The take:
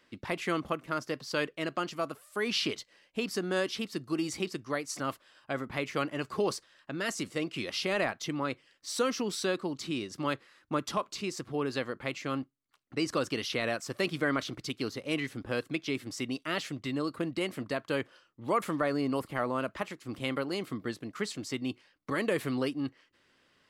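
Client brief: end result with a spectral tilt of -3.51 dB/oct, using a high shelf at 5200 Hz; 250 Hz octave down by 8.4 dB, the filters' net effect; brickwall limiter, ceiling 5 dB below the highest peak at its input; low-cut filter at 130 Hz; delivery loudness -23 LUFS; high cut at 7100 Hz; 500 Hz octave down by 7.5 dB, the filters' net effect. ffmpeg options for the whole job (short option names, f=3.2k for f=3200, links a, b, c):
-af "highpass=130,lowpass=7.1k,equalizer=f=250:t=o:g=-8,equalizer=f=500:t=o:g=-7,highshelf=f=5.2k:g=-3.5,volume=15.5dB,alimiter=limit=-7.5dB:level=0:latency=1"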